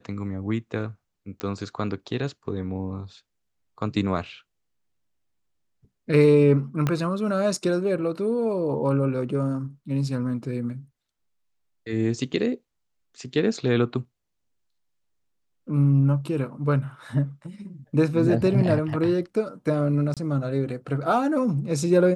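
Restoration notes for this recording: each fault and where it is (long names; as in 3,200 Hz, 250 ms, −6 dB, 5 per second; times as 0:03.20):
0:01.40: click −16 dBFS
0:06.87: click −11 dBFS
0:20.14–0:20.17: drop-out 27 ms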